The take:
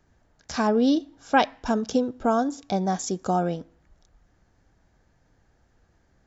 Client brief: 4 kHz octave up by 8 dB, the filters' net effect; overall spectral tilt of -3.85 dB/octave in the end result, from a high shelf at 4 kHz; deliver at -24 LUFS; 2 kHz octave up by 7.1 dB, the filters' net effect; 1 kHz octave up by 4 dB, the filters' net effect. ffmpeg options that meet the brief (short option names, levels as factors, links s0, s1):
-af "equalizer=f=1000:t=o:g=4,equalizer=f=2000:t=o:g=6,highshelf=f=4000:g=4.5,equalizer=f=4000:t=o:g=5.5,volume=0.841"